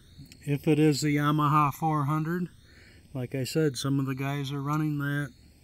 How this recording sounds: phasing stages 12, 0.39 Hz, lowest notch 490–1300 Hz

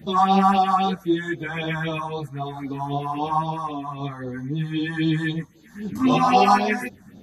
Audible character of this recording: phasing stages 4, 3.8 Hz, lowest notch 400–2000 Hz; random-step tremolo 3.5 Hz; a shimmering, thickened sound

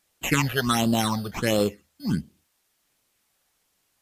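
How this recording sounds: aliases and images of a low sample rate 4700 Hz, jitter 0%; phasing stages 8, 1.4 Hz, lowest notch 280–2000 Hz; a quantiser's noise floor 12-bit, dither triangular; MP3

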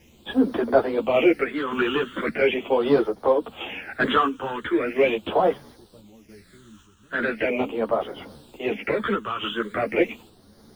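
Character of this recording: a quantiser's noise floor 10-bit, dither none; phasing stages 8, 0.4 Hz, lowest notch 630–2500 Hz; random-step tremolo; a shimmering, thickened sound

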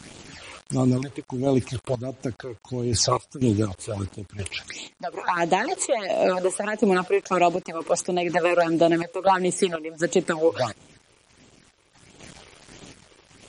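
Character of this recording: phasing stages 8, 1.5 Hz, lowest notch 200–1700 Hz; a quantiser's noise floor 8-bit, dither none; random-step tremolo 4.1 Hz, depth 85%; MP3

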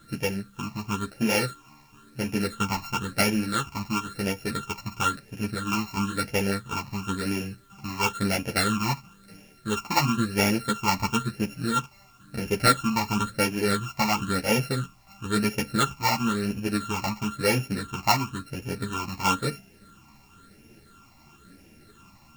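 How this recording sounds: a buzz of ramps at a fixed pitch in blocks of 32 samples; phasing stages 8, 0.98 Hz, lowest notch 450–1200 Hz; a quantiser's noise floor 12-bit, dither triangular; a shimmering, thickened sound

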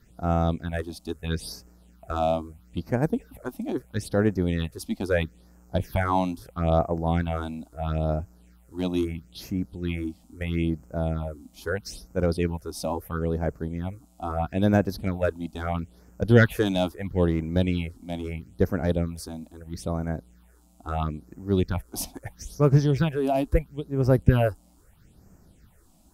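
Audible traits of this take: phasing stages 6, 0.76 Hz, lowest notch 110–3600 Hz

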